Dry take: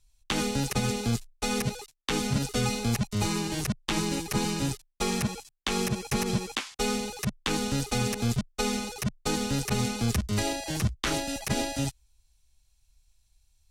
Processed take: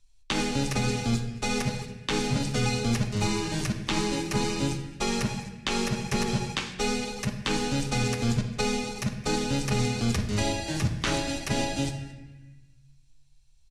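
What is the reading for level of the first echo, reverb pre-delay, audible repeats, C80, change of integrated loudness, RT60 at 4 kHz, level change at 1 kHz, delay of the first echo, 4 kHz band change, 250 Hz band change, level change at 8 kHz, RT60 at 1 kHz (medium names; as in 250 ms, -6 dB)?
-20.5 dB, 3 ms, 1, 9.5 dB, +1.0 dB, 1.0 s, +1.5 dB, 221 ms, +1.0 dB, +1.0 dB, -1.0 dB, 1.2 s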